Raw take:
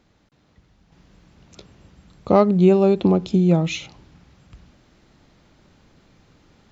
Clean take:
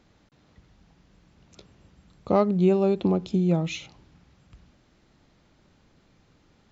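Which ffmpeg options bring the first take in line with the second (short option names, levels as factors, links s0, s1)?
-af "asetnsamples=n=441:p=0,asendcmd='0.92 volume volume -6dB',volume=1"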